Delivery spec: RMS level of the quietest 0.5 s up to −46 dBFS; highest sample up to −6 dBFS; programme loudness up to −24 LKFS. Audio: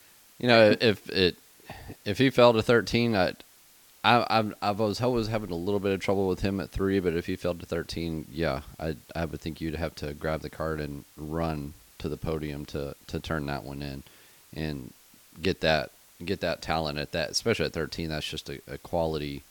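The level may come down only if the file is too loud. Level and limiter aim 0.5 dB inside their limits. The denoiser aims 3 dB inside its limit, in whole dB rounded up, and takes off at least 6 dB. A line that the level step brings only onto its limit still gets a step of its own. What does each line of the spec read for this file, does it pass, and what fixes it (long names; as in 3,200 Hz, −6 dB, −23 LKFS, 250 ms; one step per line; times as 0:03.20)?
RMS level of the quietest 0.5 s −57 dBFS: in spec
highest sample −4.5 dBFS: out of spec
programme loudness −28.0 LKFS: in spec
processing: brickwall limiter −6.5 dBFS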